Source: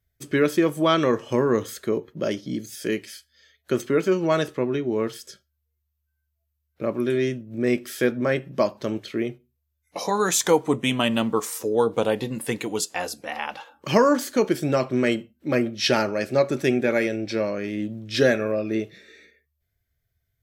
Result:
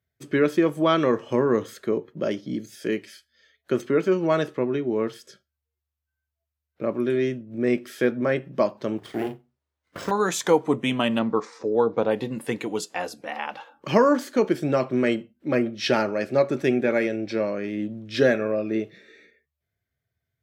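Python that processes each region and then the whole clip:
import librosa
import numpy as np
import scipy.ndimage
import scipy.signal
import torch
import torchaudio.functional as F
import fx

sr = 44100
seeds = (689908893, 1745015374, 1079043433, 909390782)

y = fx.chain(x, sr, fx.lower_of_two(delay_ms=0.6),
    fx.sample_hold(seeds[0], rate_hz=13000.0, jitter_pct=0),
    fx.doubler(ms=37.0, db=-8.0), at=(8.98, 10.11))
y = fx.chain(y, sr, fx.lowpass(hz=5400.0, slope=24),
    fx.peak_eq(hz=3000.0, db=-11.0, octaves=0.38), at=(11.19, 12.11))
y = scipy.signal.sosfilt(scipy.signal.butter(2, 120.0, 'highpass', fs=sr, output='sos'), y)
y = fx.high_shelf(y, sr, hz=4500.0, db=-11.0)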